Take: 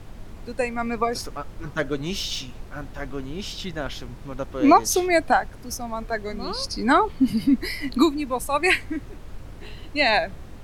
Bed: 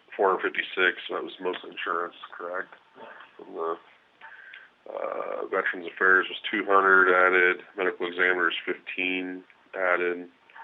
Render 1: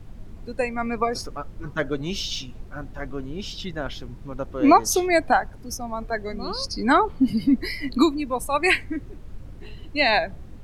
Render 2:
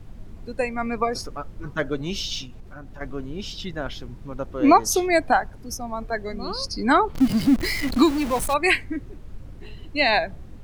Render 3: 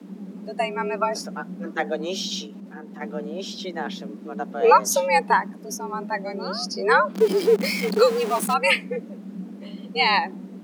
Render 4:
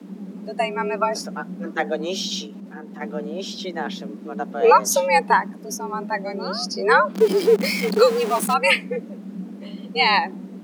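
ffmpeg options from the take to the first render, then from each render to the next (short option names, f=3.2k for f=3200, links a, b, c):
-af "afftdn=nr=8:nf=-40"
-filter_complex "[0:a]asettb=1/sr,asplit=3[a][b][c];[a]atrim=end=2.454[d];[b]atrim=start=2.45:end=3.01,asetpts=PTS-STARTPTS,afade=t=in:d=0.004:c=qsin,afade=t=out:st=0.556:d=0.004:c=qsin,acompressor=threshold=-36dB:ratio=3:attack=3.2:release=140:knee=1:detection=peak[e];[c]atrim=start=3.006[f];[d][e]acrossfade=d=0.004:c1=hsin:c2=qsin[g];[g][f]acrossfade=d=0.004:c1=qsin:c2=hsin,asettb=1/sr,asplit=3[h][i][j];[h]atrim=end=7.154[k];[i]atrim=start=7.15:end=8.54,asetpts=PTS-STARTPTS,afade=t=in:d=0.004:c=qsin,afade=t=out:st=1.386:d=0.004:c=qsin,aeval=exprs='val(0)+0.5*0.0531*sgn(val(0))':c=same[l];[j]atrim=start=8.536[m];[k][l]acrossfade=d=0.004:c1=hsin:c2=qsin[n];[n][m]acrossfade=d=0.004:c1=qsin:c2=hsin"
-af "afreqshift=180"
-af "volume=2dB,alimiter=limit=-3dB:level=0:latency=1"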